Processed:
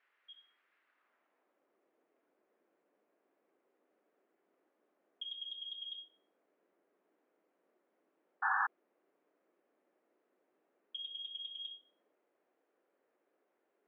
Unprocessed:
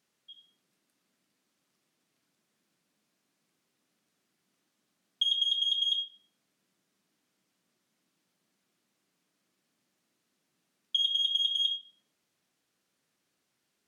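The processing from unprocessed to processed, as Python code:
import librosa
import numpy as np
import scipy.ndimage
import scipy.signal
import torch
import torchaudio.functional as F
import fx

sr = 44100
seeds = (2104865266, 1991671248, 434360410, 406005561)

y = fx.filter_sweep_bandpass(x, sr, from_hz=1700.0, to_hz=500.0, start_s=0.82, end_s=1.65, q=1.2)
y = fx.spec_paint(y, sr, seeds[0], shape='noise', start_s=8.42, length_s=0.25, low_hz=760.0, high_hz=1800.0, level_db=-41.0)
y = scipy.signal.sosfilt(scipy.signal.cheby1(2, 1.0, [360.0, 2200.0], 'bandpass', fs=sr, output='sos'), y)
y = y * librosa.db_to_amplitude(9.5)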